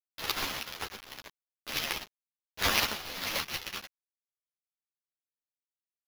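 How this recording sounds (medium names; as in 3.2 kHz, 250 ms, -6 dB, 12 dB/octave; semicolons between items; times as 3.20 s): aliases and images of a low sample rate 8.4 kHz, jitter 0%; random-step tremolo, depth 75%; a quantiser's noise floor 8-bit, dither none; a shimmering, thickened sound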